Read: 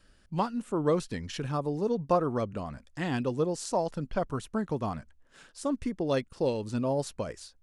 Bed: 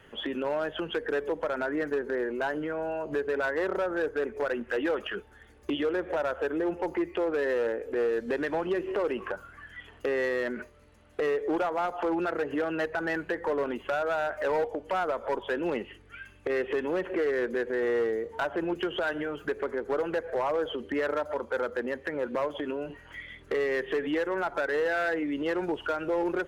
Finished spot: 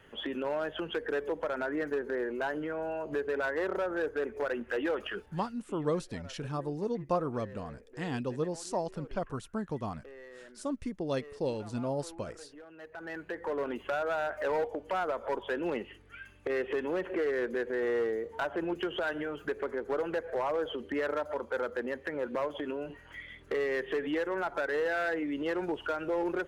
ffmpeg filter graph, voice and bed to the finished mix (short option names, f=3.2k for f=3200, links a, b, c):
-filter_complex "[0:a]adelay=5000,volume=-4.5dB[a];[1:a]volume=15.5dB,afade=t=out:st=5.4:d=0.24:silence=0.11885,afade=t=in:st=12.77:d=0.98:silence=0.11885[b];[a][b]amix=inputs=2:normalize=0"